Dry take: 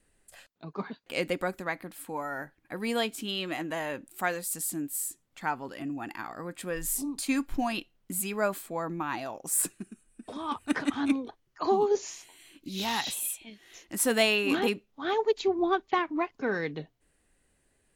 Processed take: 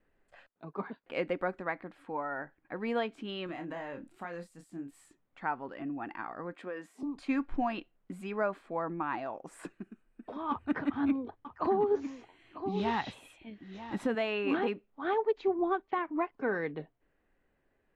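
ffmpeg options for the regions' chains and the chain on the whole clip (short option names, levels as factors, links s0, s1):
-filter_complex "[0:a]asettb=1/sr,asplit=3[s0][s1][s2];[s0]atrim=end=3.464[s3];[s1]atrim=start=3.46:end=4.91,asetpts=PTS-STARTPTS,afade=t=in:d=0.004:c=qsin,afade=t=out:st=1.446:d=0.004:c=qsin,bass=f=250:g=6,treble=f=4000:g=9,acompressor=threshold=0.0178:ratio=6:attack=3.2:release=140:knee=1:detection=peak,asplit=2[s4][s5];[s5]adelay=29,volume=0.447[s6];[s4][s6]amix=inputs=2:normalize=0,atrim=end_sample=63945[s7];[s2]atrim=start=4.906[s8];[s3][s7]acrossfade=d=0.004:c1=hsin:c2=qsin[s9];[s9][s8]acrossfade=d=0.004:c1=qsin:c2=hsin,asettb=1/sr,asplit=3[s10][s11][s12];[s10]atrim=end=6.544[s13];[s11]atrim=start=6.54:end=7.03,asetpts=PTS-STARTPTS,afade=t=in:d=0.004:c=qsin,afade=t=out:st=0.486:d=0.004:c=qsin,highpass=f=210:w=0.5412,highpass=f=210:w=1.3066,acompressor=threshold=0.0224:ratio=5:attack=3.2:release=140:knee=1:detection=peak[s14];[s12]atrim=start=7.026[s15];[s13][s14]acrossfade=d=0.004:c1=hsin:c2=qsin[s16];[s16][s15]acrossfade=d=0.004:c1=qsin:c2=hsin,asettb=1/sr,asplit=3[s17][s18][s19];[s17]atrim=end=10.504[s20];[s18]atrim=start=10.5:end=14.15,asetpts=PTS-STARTPTS,afade=t=in:d=0.004:c=qsin,afade=t=out:st=3.646:d=0.004:c=qsin,equalizer=f=80:w=0.55:g=14.5,aecho=1:1:947:0.224,atrim=end_sample=160965[s21];[s19]atrim=start=14.146[s22];[s20][s21]acrossfade=d=0.004:c1=hsin:c2=qsin[s23];[s23][s22]acrossfade=d=0.004:c1=qsin:c2=hsin,lowpass=1800,equalizer=f=68:w=0.36:g=-7,alimiter=limit=0.1:level=0:latency=1:release=257"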